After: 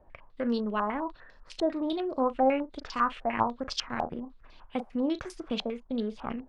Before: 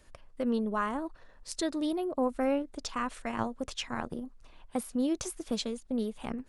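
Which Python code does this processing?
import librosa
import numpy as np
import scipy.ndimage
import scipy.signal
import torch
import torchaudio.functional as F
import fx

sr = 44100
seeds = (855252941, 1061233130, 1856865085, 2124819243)

y = fx.doubler(x, sr, ms=38.0, db=-13)
y = fx.filter_held_lowpass(y, sr, hz=10.0, low_hz=770.0, high_hz=5000.0)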